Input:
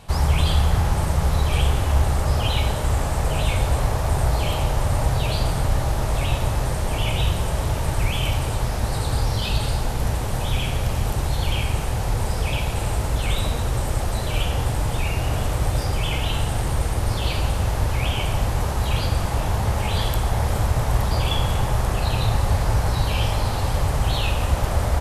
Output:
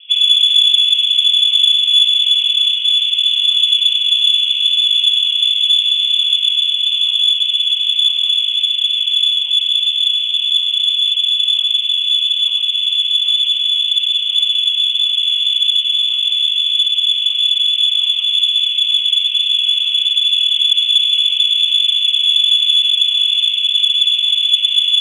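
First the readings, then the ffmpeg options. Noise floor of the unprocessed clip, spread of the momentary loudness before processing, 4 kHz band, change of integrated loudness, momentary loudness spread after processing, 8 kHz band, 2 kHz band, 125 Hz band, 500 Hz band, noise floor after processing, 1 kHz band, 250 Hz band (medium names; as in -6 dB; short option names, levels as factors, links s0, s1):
-25 dBFS, 3 LU, +24.0 dB, +12.0 dB, 3 LU, no reading, +2.5 dB, under -40 dB, under -40 dB, -20 dBFS, under -30 dB, under -40 dB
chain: -af "lowpass=f=3000:t=q:w=0.5098,lowpass=f=3000:t=q:w=0.6013,lowpass=f=3000:t=q:w=0.9,lowpass=f=3000:t=q:w=2.563,afreqshift=-3500,aderivative,aexciter=amount=10.9:drive=7.3:freq=2700,volume=0.422"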